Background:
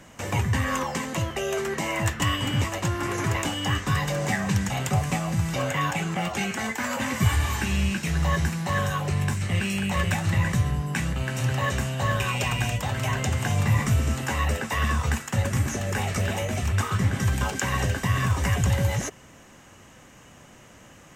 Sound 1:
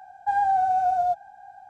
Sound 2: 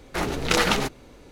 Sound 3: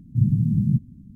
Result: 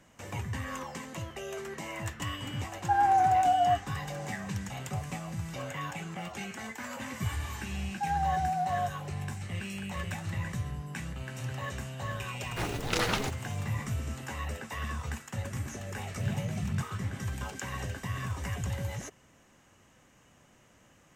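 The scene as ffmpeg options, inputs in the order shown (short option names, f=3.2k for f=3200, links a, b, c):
-filter_complex "[1:a]asplit=2[a][b];[0:a]volume=-11.5dB[c];[2:a]acrusher=bits=6:mix=0:aa=0.000001[d];[3:a]acrusher=bits=5:mix=0:aa=0.5[e];[a]atrim=end=1.69,asetpts=PTS-STARTPTS,volume=-2dB,afade=t=in:d=0.004:c=hsin,afade=t=out:st=1.686:d=0.004:c=hsin,adelay=2620[f];[b]atrim=end=1.69,asetpts=PTS-STARTPTS,volume=-8.5dB,afade=t=in:d=0.004:c=hsin,afade=t=out:st=1.686:d=0.004:c=hsin,adelay=7740[g];[d]atrim=end=1.31,asetpts=PTS-STARTPTS,volume=-8.5dB,afade=t=in:d=0.004:c=hsin,afade=t=out:st=1.306:d=0.004:c=hsin,adelay=12420[h];[e]atrim=end=1.15,asetpts=PTS-STARTPTS,volume=-14dB,afade=t=in:d=0.004:c=hsin,afade=t=out:st=1.146:d=0.004:c=hsin,adelay=16050[i];[c][f][g][h][i]amix=inputs=5:normalize=0"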